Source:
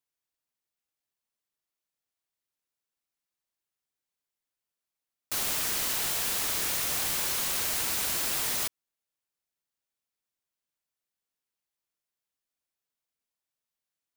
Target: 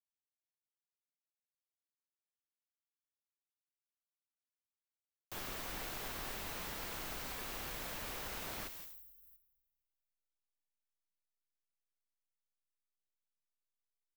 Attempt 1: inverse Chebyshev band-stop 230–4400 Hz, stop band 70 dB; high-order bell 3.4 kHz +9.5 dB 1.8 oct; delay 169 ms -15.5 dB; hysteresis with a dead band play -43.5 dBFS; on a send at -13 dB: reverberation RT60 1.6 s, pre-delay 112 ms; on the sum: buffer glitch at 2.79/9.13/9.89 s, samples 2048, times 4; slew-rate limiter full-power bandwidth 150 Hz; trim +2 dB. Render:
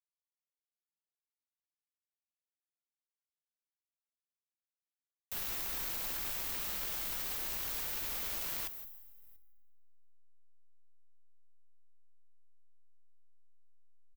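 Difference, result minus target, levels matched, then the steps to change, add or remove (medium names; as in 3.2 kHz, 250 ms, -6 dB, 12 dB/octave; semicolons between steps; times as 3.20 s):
hysteresis with a dead band: distortion +10 dB; slew-rate limiter: distortion -8 dB
change: hysteresis with a dead band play -50.5 dBFS; change: slew-rate limiter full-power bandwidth 42.5 Hz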